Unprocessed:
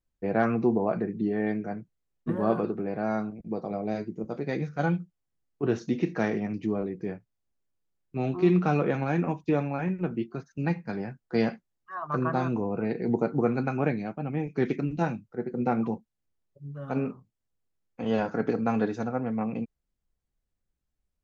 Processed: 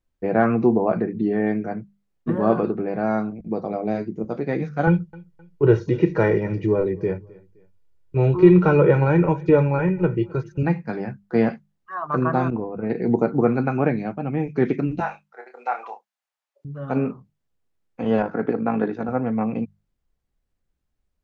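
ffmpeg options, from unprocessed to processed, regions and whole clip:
-filter_complex "[0:a]asettb=1/sr,asplit=3[s0][s1][s2];[s0]atrim=end=4.874[s3];[s1]atrim=start=4.87:end=10.63,asetpts=PTS-STARTPTS,afade=t=in:d=0.004:c=qsin,afade=t=out:st=5.756:d=0.004:c=qsin,lowshelf=f=170:g=9.5,aecho=1:1:2.1:0.84,atrim=end_sample=254016,aecho=1:1:260|520:0.0668|0.0241,atrim=end_sample=254016[s4];[s2]atrim=start=10.626[s5];[s3][s4]acrossfade=d=0.004:c1=hsin:c2=qsin[s6];[s6][s5]acrossfade=d=0.004:c1=qsin:c2=hsin,asettb=1/sr,asplit=3[s7][s8][s9];[s7]atrim=end=12.504[s10];[s8]atrim=start=12.5:end=12.9,asetpts=PTS-STARTPTS,afade=t=in:d=0.004:c=qsin,afade=t=out:st=0.396:d=0.004:c=qsin,lowpass=2000,agate=range=0.0224:threshold=0.0562:ratio=3:release=100:detection=peak[s11];[s9]atrim=start=12.896[s12];[s10][s11]acrossfade=d=0.004:c1=hsin:c2=qsin[s13];[s13][s12]acrossfade=d=0.004:c1=qsin:c2=hsin,asettb=1/sr,asplit=3[s14][s15][s16];[s14]atrim=end=15.004[s17];[s15]atrim=start=15:end=16.65,asetpts=PTS-STARTPTS,afade=t=in:d=0.004:c=qsin,afade=t=out:st=1.646:d=0.004:c=qsin,highpass=f=720:w=0.5412,highpass=f=720:w=1.3066,asplit=2[s18][s19];[s19]adelay=29,volume=0.447[s20];[s18][s20]amix=inputs=2:normalize=0,atrim=end_sample=72765[s21];[s16]atrim=start=16.646[s22];[s17][s21]acrossfade=d=0.004:c1=hsin:c2=qsin[s23];[s23][s22]acrossfade=d=0.004:c1=qsin:c2=hsin,asettb=1/sr,asplit=3[s24][s25][s26];[s24]atrim=end=18.224[s27];[s25]atrim=start=18.22:end=19.09,asetpts=PTS-STARTPTS,afade=t=in:d=0.004:c=qsin,afade=t=out:st=0.866:d=0.004:c=qsin,tremolo=f=52:d=0.519,highpass=130,lowpass=2900[s28];[s26]atrim=start=19.086[s29];[s27][s28]acrossfade=d=0.004:c1=hsin:c2=qsin[s30];[s30][s29]acrossfade=d=0.004:c1=qsin:c2=hsin,acrossover=split=2600[s31][s32];[s32]acompressor=threshold=0.002:ratio=4:attack=1:release=60[s33];[s31][s33]amix=inputs=2:normalize=0,highshelf=f=5100:g=-8.5,bandreject=f=50:t=h:w=6,bandreject=f=100:t=h:w=6,bandreject=f=150:t=h:w=6,bandreject=f=200:t=h:w=6,volume=2.11"

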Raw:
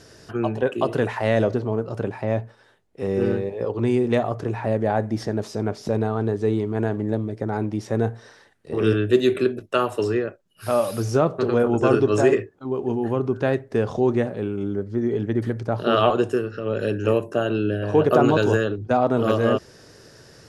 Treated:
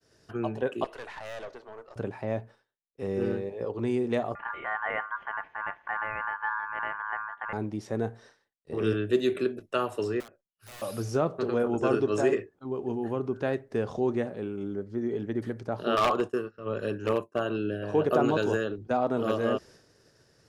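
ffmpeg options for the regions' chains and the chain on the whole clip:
-filter_complex "[0:a]asettb=1/sr,asplit=3[s0][s1][s2];[s0]atrim=end=0.844[s3];[s1]atrim=start=0.84:end=1.96,asetpts=PTS-STARTPTS,afade=t=in:d=0.004:c=qsin,afade=t=out:st=1.116:d=0.004:c=qsin,highpass=760,highshelf=f=7700:g=-7,aeval=exprs='(tanh(25.1*val(0)+0.55)-tanh(0.55))/25.1':c=same[s4];[s2]atrim=start=1.956[s5];[s3][s4]acrossfade=d=0.004:c1=hsin:c2=qsin[s6];[s6][s5]acrossfade=d=0.004:c1=qsin:c2=hsin,asettb=1/sr,asplit=3[s7][s8][s9];[s7]atrim=end=4.354[s10];[s8]atrim=start=4.35:end=7.53,asetpts=PTS-STARTPTS,afade=t=in:d=0.004:c=qsin,afade=t=out:st=3.176:d=0.004:c=qsin,lowpass=f=1600:w=0.5412,lowpass=f=1600:w=1.3066,aeval=exprs='val(0)*sin(2*PI*1300*n/s)':c=same[s11];[s9]atrim=start=7.526[s12];[s10][s11]acrossfade=d=0.004:c1=hsin:c2=qsin[s13];[s13][s12]acrossfade=d=0.004:c1=qsin:c2=hsin,asettb=1/sr,asplit=3[s14][s15][s16];[s14]atrim=end=10.204[s17];[s15]atrim=start=10.2:end=10.82,asetpts=PTS-STARTPTS,afade=t=in:d=0.004:c=qsin,afade=t=out:st=0.616:d=0.004:c=qsin,acompressor=threshold=0.00501:ratio=2:attack=3.2:release=140:knee=1:detection=peak,aeval=exprs='(mod(53.1*val(0)+1,2)-1)/53.1':c=same[s18];[s16]atrim=start=10.816[s19];[s17][s18]acrossfade=d=0.004:c1=hsin:c2=qsin[s20];[s20][s19]acrossfade=d=0.004:c1=qsin:c2=hsin,asettb=1/sr,asplit=3[s21][s22][s23];[s21]atrim=end=15.964[s24];[s22]atrim=start=15.96:end=17.57,asetpts=PTS-STARTPTS,afade=t=in:d=0.004:c=qsin,afade=t=out:st=1.606:d=0.004:c=qsin,agate=range=0.0224:threshold=0.0562:ratio=3:release=100:detection=peak,equalizer=f=1100:w=3.4:g=8.5,aeval=exprs='0.299*(abs(mod(val(0)/0.299+3,4)-2)-1)':c=same[s25];[s23]atrim=start=17.566[s26];[s24][s25]acrossfade=d=0.004:c1=hsin:c2=qsin[s27];[s27][s26]acrossfade=d=0.004:c1=qsin:c2=hsin,adynamicequalizer=threshold=0.01:dfrequency=110:dqfactor=1.9:tfrequency=110:tqfactor=1.9:attack=5:release=100:ratio=0.375:range=3:mode=cutabove:tftype=bell,agate=range=0.0224:threshold=0.00891:ratio=3:detection=peak,volume=0.447"

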